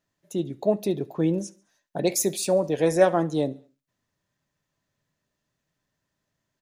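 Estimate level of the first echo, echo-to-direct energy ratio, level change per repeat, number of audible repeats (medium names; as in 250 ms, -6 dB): -24.0 dB, -23.0 dB, -6.0 dB, 2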